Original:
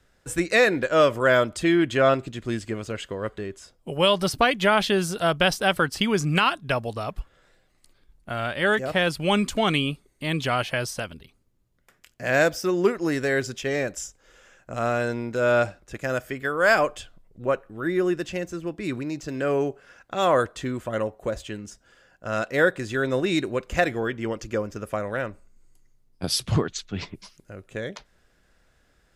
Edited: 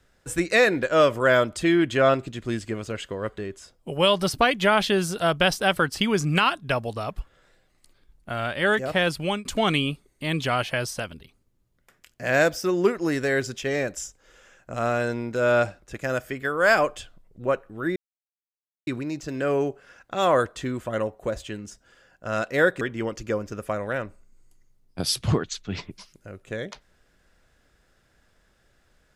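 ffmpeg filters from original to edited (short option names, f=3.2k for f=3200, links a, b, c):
-filter_complex "[0:a]asplit=5[a][b][c][d][e];[a]atrim=end=9.45,asetpts=PTS-STARTPTS,afade=t=out:st=9.11:d=0.34:c=qsin[f];[b]atrim=start=9.45:end=17.96,asetpts=PTS-STARTPTS,afade=t=in:d=0.004:c=hsin,afade=t=out:st=8.506:d=0.004:c=hsin[g];[c]atrim=start=17.96:end=18.87,asetpts=PTS-STARTPTS,volume=0[h];[d]atrim=start=18.87:end=22.812,asetpts=PTS-STARTPTS,afade=t=in:d=0.004:c=hsin[i];[e]atrim=start=24.048[j];[f][g][h][i]concat=n=4:v=0:a=1[k];[k][j]acrossfade=d=0.004:c1=hsin:c2=hsin"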